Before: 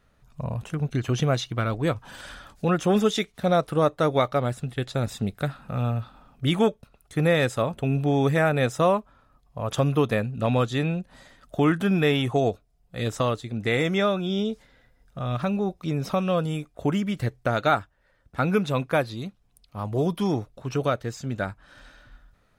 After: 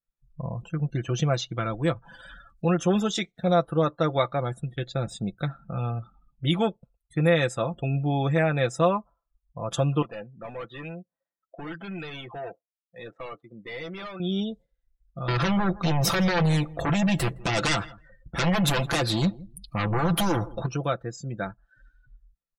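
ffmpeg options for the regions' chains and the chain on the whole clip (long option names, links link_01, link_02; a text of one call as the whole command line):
ffmpeg -i in.wav -filter_complex "[0:a]asettb=1/sr,asplit=3[link_01][link_02][link_03];[link_01]atrim=end=10.024[link_04];[link_02]atrim=start=10.02:end=14.2,asetpts=PTS-STARTPTS,afade=type=in:duration=0.004:curve=qsin,afade=type=out:start_time=4.176:duration=0.004:curve=qsin,highpass=frequency=680:poles=1,volume=31dB,asoftclip=hard,volume=-31dB,adynamicsmooth=sensitivity=8:basefreq=970[link_05];[link_03]atrim=start=14.196[link_06];[link_04][link_05]acrossfade=duration=0.004:curve1=hsin:curve2=qsin[link_07];[link_07][link_06]acrossfade=duration=0.004:curve1=qsin:curve2=hsin,asettb=1/sr,asplit=3[link_08][link_09][link_10];[link_08]atrim=end=15.284[link_11];[link_09]atrim=start=15.28:end=20.66,asetpts=PTS-STARTPTS,afade=type=in:duration=0.004:curve=qsin,afade=type=out:start_time=5.376:duration=0.004:curve=qsin,acompressor=threshold=-28dB:ratio=3:attack=3.2:release=140:knee=1:detection=peak,aeval=exprs='0.119*sin(PI/2*3.98*val(0)/0.119)':channel_layout=same,aecho=1:1:164|328:0.112|0.0325,atrim=end_sample=237258[link_12];[link_10]atrim=start=20.656[link_13];[link_11][link_12]acrossfade=duration=0.004:curve1=hsin:curve2=qsin[link_14];[link_14][link_13]acrossfade=duration=0.004:curve1=qsin:curve2=hsin,afftdn=noise_reduction=33:noise_floor=-41,highshelf=frequency=6100:gain=8,aecho=1:1:5.9:0.59,volume=-3.5dB" out.wav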